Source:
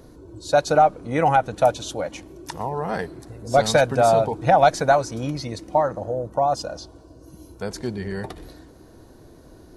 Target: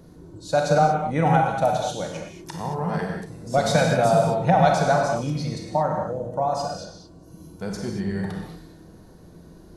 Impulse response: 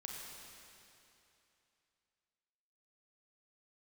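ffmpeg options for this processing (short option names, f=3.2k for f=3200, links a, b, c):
-filter_complex "[0:a]equalizer=f=170:t=o:w=0.39:g=13.5[a];[1:a]atrim=start_sample=2205,afade=t=out:st=0.29:d=0.01,atrim=end_sample=13230[b];[a][b]afir=irnorm=-1:irlink=0,volume=1.5dB"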